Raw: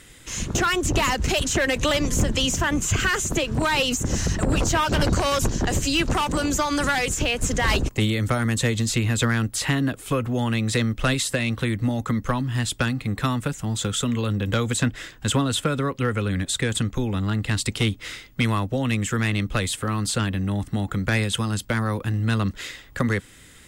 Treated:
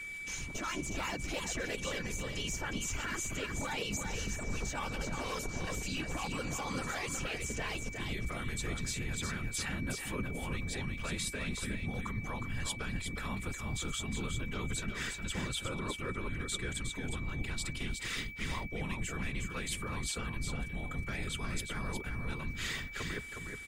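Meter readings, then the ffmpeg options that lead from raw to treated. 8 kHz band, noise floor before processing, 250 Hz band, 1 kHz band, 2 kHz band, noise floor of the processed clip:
−12.0 dB, −48 dBFS, −16.5 dB, −15.0 dB, −11.5 dB, −43 dBFS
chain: -filter_complex "[0:a]dynaudnorm=framelen=250:gausssize=7:maxgain=11.5dB,alimiter=limit=-13dB:level=0:latency=1:release=233,areverse,acompressor=threshold=-29dB:ratio=8,areverse,afftfilt=real='hypot(re,im)*cos(2*PI*random(0))':imag='hypot(re,im)*sin(2*PI*random(1))':win_size=512:overlap=0.75,afreqshift=-75,aeval=exprs='val(0)+0.01*sin(2*PI*2300*n/s)':channel_layout=same,asplit=2[link_01][link_02];[link_02]aecho=0:1:362:0.531[link_03];[link_01][link_03]amix=inputs=2:normalize=0" -ar 48000 -c:a libmp3lame -b:a 64k

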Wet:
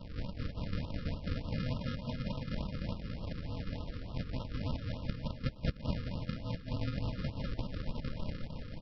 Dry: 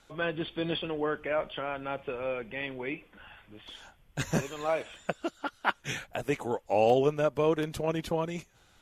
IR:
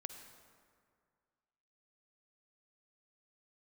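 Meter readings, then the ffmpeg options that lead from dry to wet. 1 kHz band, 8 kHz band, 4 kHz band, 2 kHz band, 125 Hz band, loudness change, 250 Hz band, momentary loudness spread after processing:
−16.5 dB, below −20 dB, −7.0 dB, −13.5 dB, +3.0 dB, −8.0 dB, −4.5 dB, 5 LU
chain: -af "afftfilt=real='re*(1-between(b*sr/4096,120,1100))':imag='im*(1-between(b*sr/4096,120,1100))':win_size=4096:overlap=0.75,acompressor=threshold=-54dB:ratio=5,aresample=11025,acrusher=samples=29:mix=1:aa=0.000001,aresample=44100,aecho=1:1:210|388.5|540.2|669.2|778.8:0.631|0.398|0.251|0.158|0.1,afftfilt=real='re*(1-between(b*sr/1024,740*pow(1900/740,0.5+0.5*sin(2*PI*3.4*pts/sr))/1.41,740*pow(1900/740,0.5+0.5*sin(2*PI*3.4*pts/sr))*1.41))':imag='im*(1-between(b*sr/1024,740*pow(1900/740,0.5+0.5*sin(2*PI*3.4*pts/sr))/1.41,740*pow(1900/740,0.5+0.5*sin(2*PI*3.4*pts/sr))*1.41))':win_size=1024:overlap=0.75,volume=18dB"

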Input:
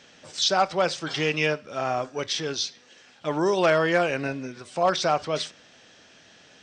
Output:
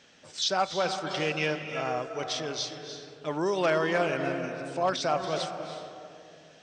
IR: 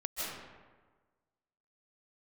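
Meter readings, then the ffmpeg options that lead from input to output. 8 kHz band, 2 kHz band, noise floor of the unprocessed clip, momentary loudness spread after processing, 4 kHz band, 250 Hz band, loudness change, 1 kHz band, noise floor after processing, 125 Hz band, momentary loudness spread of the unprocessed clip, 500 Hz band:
−4.5 dB, −4.5 dB, −54 dBFS, 15 LU, −4.5 dB, −3.5 dB, −4.5 dB, −4.0 dB, −54 dBFS, −4.0 dB, 11 LU, −4.0 dB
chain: -filter_complex "[0:a]asplit=2[link_01][link_02];[1:a]atrim=start_sample=2205,asetrate=23373,aresample=44100[link_03];[link_02][link_03]afir=irnorm=-1:irlink=0,volume=-12.5dB[link_04];[link_01][link_04]amix=inputs=2:normalize=0,volume=-7dB"

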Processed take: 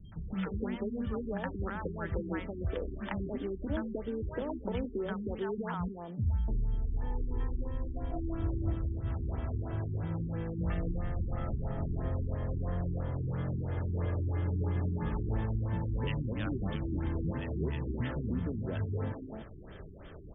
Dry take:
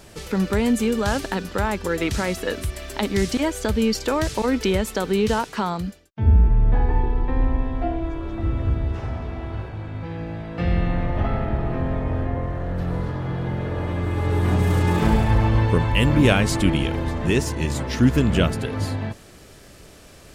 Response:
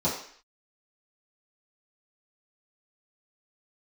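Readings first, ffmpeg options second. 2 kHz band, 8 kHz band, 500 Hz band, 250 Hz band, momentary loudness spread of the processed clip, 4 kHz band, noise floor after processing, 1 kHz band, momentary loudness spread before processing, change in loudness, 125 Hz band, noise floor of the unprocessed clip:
−17.0 dB, below −40 dB, −13.5 dB, −13.5 dB, 5 LU, below −20 dB, −47 dBFS, −16.0 dB, 11 LU, −12.5 dB, −11.0 dB, −46 dBFS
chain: -filter_complex "[0:a]equalizer=frequency=2500:width=2.3:gain=-7,acompressor=threshold=-30dB:ratio=6,acrossover=split=230|810[link_01][link_02][link_03];[link_03]adelay=120[link_04];[link_02]adelay=300[link_05];[link_01][link_05][link_04]amix=inputs=3:normalize=0,aeval=exprs='val(0)+0.000562*sin(2*PI*3200*n/s)':channel_layout=same,asplit=2[link_06][link_07];[1:a]atrim=start_sample=2205[link_08];[link_07][link_08]afir=irnorm=-1:irlink=0,volume=-30dB[link_09];[link_06][link_09]amix=inputs=2:normalize=0,afftfilt=real='re*lt(b*sr/1024,390*pow(3700/390,0.5+0.5*sin(2*PI*3*pts/sr)))':imag='im*lt(b*sr/1024,390*pow(3700/390,0.5+0.5*sin(2*PI*3*pts/sr)))':win_size=1024:overlap=0.75"

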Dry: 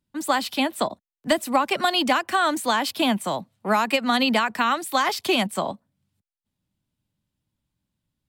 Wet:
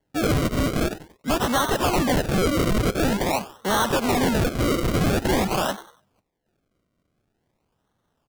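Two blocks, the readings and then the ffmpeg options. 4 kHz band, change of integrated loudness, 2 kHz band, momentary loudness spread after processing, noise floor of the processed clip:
−4.0 dB, 0.0 dB, −3.0 dB, 5 LU, −75 dBFS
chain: -filter_complex "[0:a]highshelf=frequency=4400:gain=11.5,bandreject=frequency=690:width=13,asplit=2[link_01][link_02];[link_02]asplit=3[link_03][link_04][link_05];[link_03]adelay=94,afreqshift=140,volume=-18dB[link_06];[link_04]adelay=188,afreqshift=280,volume=-27.6dB[link_07];[link_05]adelay=282,afreqshift=420,volume=-37.3dB[link_08];[link_06][link_07][link_08]amix=inputs=3:normalize=0[link_09];[link_01][link_09]amix=inputs=2:normalize=0,asoftclip=type=hard:threshold=-24dB,lowshelf=frequency=170:gain=-7,acrusher=samples=35:mix=1:aa=0.000001:lfo=1:lforange=35:lforate=0.47,volume=6dB"

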